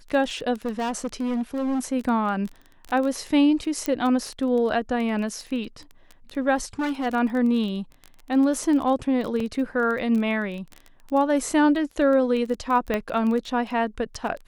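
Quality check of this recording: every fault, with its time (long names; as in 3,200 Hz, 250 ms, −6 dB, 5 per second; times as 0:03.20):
surface crackle 15 per second −28 dBFS
0:00.65–0:01.80: clipping −22.5 dBFS
0:03.86: click −11 dBFS
0:06.56–0:07.07: clipping −22.5 dBFS
0:09.40: drop-out 3.6 ms
0:12.94: click −12 dBFS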